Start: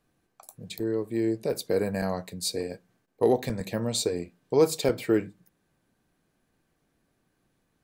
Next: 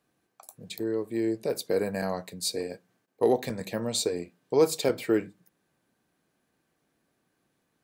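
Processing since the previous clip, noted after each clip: high-pass 190 Hz 6 dB/octave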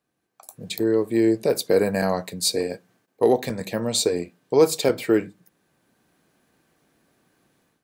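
level rider gain up to 14 dB; trim -4.5 dB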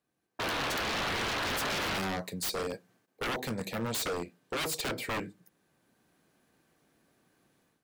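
painted sound noise, 0.39–1.99 s, 260–1800 Hz -22 dBFS; wavefolder -23 dBFS; trim -4.5 dB

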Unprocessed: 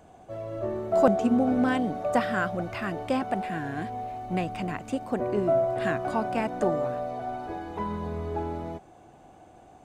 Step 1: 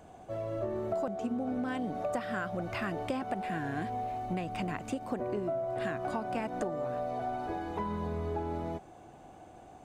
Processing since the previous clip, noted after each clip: compression 16:1, threshold -30 dBFS, peak gain reduction 16.5 dB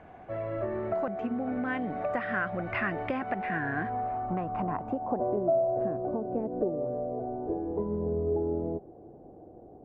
low-pass sweep 2 kHz -> 450 Hz, 3.41–6.24 s; trim +1.5 dB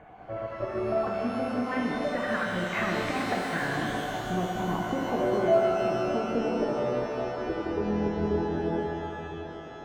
random holes in the spectrogram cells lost 21%; pitch-shifted reverb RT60 3.1 s, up +12 st, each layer -8 dB, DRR -1.5 dB

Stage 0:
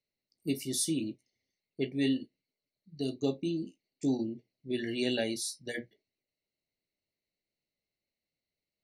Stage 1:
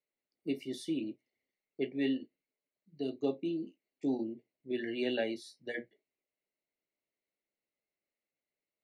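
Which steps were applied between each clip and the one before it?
three-band isolator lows -13 dB, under 240 Hz, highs -22 dB, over 3.1 kHz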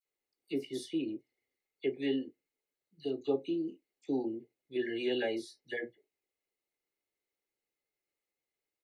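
comb 2.4 ms, depth 41%; phase dispersion lows, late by 53 ms, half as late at 2 kHz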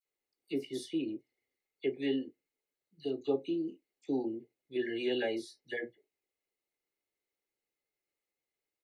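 no audible change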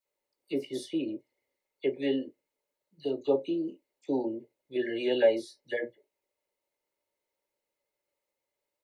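small resonant body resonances 580/920 Hz, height 14 dB, ringing for 40 ms; trim +2 dB

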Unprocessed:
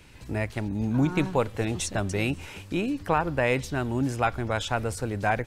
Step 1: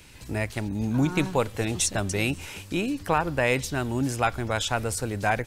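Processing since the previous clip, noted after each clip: treble shelf 3.8 kHz +9 dB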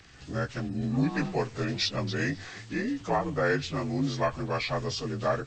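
frequency axis rescaled in octaves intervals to 85%; trim -1.5 dB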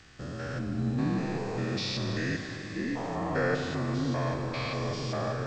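spectrogram pixelated in time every 200 ms; Schroeder reverb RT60 3.3 s, combs from 31 ms, DRR 5.5 dB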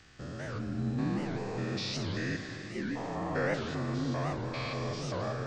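warped record 78 rpm, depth 250 cents; trim -3 dB

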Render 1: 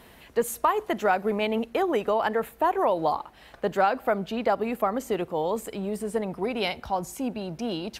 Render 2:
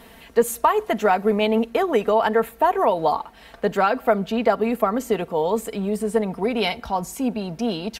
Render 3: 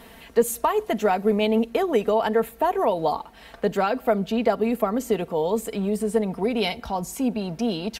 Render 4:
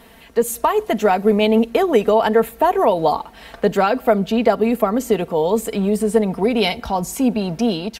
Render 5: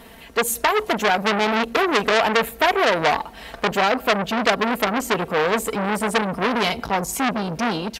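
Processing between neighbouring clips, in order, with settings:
comb 4.4 ms, depth 46%; trim +4 dB
dynamic bell 1.3 kHz, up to -6 dB, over -33 dBFS, Q 0.73
level rider gain up to 7 dB
transformer saturation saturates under 3.1 kHz; trim +2.5 dB

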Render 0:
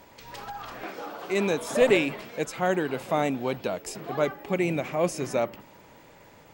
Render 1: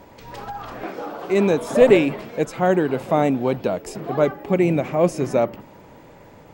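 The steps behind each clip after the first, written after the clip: tilt shelf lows +5 dB, about 1.2 kHz; trim +4 dB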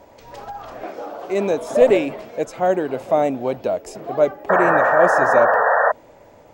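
painted sound noise, 4.49–5.92 s, 430–1900 Hz -15 dBFS; fifteen-band graphic EQ 160 Hz -6 dB, 630 Hz +8 dB, 6.3 kHz +4 dB; trim -4 dB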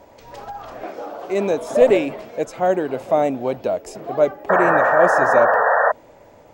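no audible change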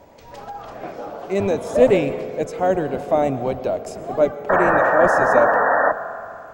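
octave divider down 1 oct, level -4 dB; reverberation RT60 2.6 s, pre-delay 102 ms, DRR 12 dB; trim -1 dB

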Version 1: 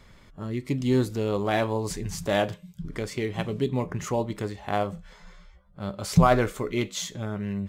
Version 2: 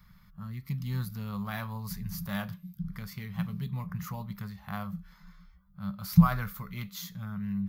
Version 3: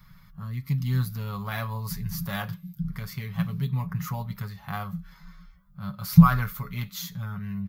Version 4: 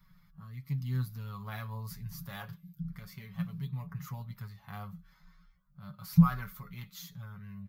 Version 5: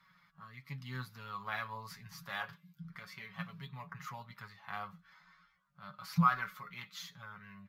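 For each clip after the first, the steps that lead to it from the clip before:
FFT filter 120 Hz 0 dB, 190 Hz +8 dB, 300 Hz -27 dB, 660 Hz -14 dB, 1.2 kHz +1 dB, 1.9 kHz -4 dB, 3 kHz -8 dB, 4.7 kHz -1 dB, 8.2 kHz -12 dB, 13 kHz +14 dB; trim -5 dB
comb 7.2 ms, depth 58%; trim +4 dB
flange 0.31 Hz, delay 5.1 ms, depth 4.5 ms, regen +43%; trim -7 dB
band-pass filter 1.7 kHz, Q 0.66; trim +7 dB

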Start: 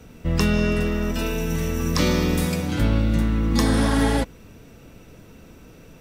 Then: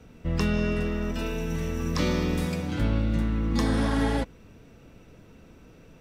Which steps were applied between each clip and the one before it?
treble shelf 7.3 kHz -10.5 dB; trim -5 dB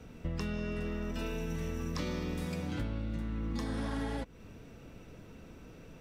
compression 6:1, threshold -33 dBFS, peak gain reduction 12.5 dB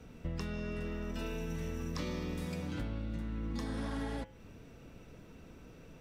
de-hum 105.4 Hz, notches 31; trim -2 dB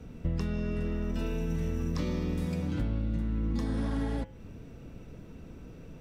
bass shelf 460 Hz +8.5 dB

